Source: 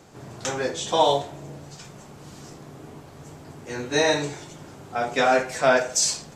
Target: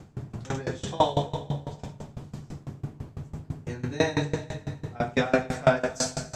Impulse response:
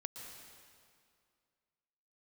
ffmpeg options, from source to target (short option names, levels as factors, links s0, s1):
-filter_complex "[0:a]bass=f=250:g=15,treble=f=4000:g=-4,asplit=2[s0][s1];[1:a]atrim=start_sample=2205,asetrate=40572,aresample=44100,adelay=97[s2];[s1][s2]afir=irnorm=-1:irlink=0,volume=0.668[s3];[s0][s3]amix=inputs=2:normalize=0,aeval=exprs='val(0)*pow(10,-23*if(lt(mod(6*n/s,1),2*abs(6)/1000),1-mod(6*n/s,1)/(2*abs(6)/1000),(mod(6*n/s,1)-2*abs(6)/1000)/(1-2*abs(6)/1000))/20)':c=same"